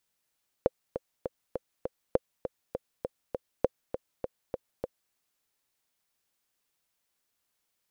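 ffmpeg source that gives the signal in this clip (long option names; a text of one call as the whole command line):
ffmpeg -f lavfi -i "aevalsrc='pow(10,(-9-9.5*gte(mod(t,5*60/201),60/201))/20)*sin(2*PI*514*mod(t,60/201))*exp(-6.91*mod(t,60/201)/0.03)':duration=4.47:sample_rate=44100" out.wav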